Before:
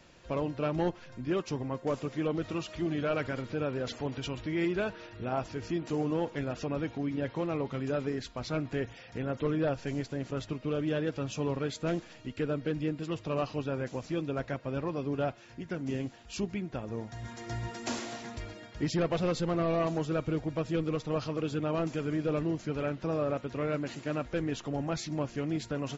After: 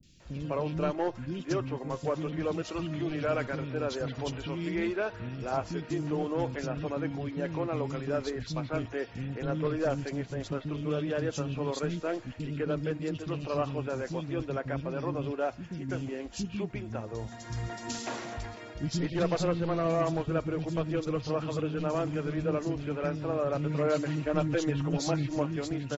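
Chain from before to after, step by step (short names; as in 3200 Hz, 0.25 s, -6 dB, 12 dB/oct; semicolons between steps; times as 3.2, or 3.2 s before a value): 23.46–25.37 comb 6.4 ms, depth 83%; three bands offset in time lows, highs, mids 30/200 ms, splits 280/2900 Hz; gain +2 dB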